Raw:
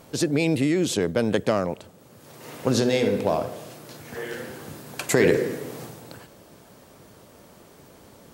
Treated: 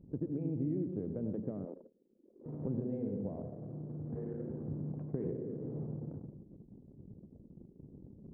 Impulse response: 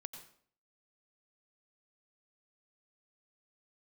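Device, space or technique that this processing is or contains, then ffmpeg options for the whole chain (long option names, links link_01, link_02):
television next door: -filter_complex "[0:a]acompressor=threshold=-35dB:ratio=4,lowpass=310[link_01];[1:a]atrim=start_sample=2205[link_02];[link_01][link_02]afir=irnorm=-1:irlink=0,asettb=1/sr,asplit=3[link_03][link_04][link_05];[link_03]atrim=end=1.654[link_06];[link_04]atrim=start=1.65:end=2.46,asetpts=PTS-STARTPTS,afade=type=in:duration=0.004:curve=qsin,afade=type=out:start_time=0.806:duration=0.004:curve=qsin,highpass=frequency=270:width=0.5412,highpass=frequency=270:width=1.3066[link_07];[link_05]atrim=start=2.456[link_08];[link_06][link_07]acrossfade=duration=0.004:curve1=hsin:curve2=qsin[link_09];[link_09][link_08]acrossfade=duration=0.004:curve1=qsin:curve2=hsin,anlmdn=0.001,volume=7dB"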